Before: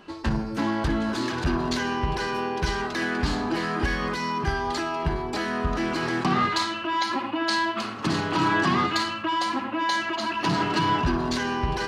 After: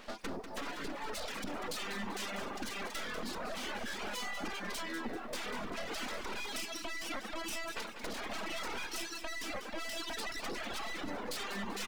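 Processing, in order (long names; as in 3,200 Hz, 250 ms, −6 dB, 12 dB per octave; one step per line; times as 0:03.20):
0:00.61–0:01.10: lower of the sound and its delayed copy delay 7 ms
far-end echo of a speakerphone 90 ms, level −14 dB
reverb reduction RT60 1.8 s
full-wave rectification
brickwall limiter −20.5 dBFS, peak gain reduction 7.5 dB
soft clipping −26 dBFS, distortion −16 dB
reverb reduction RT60 1.6 s
downward compressor, threshold −35 dBFS, peak gain reduction 6 dB
low shelf with overshoot 170 Hz −7.5 dB, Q 3
feedback echo at a low word length 194 ms, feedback 35%, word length 11 bits, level −9 dB
level +1.5 dB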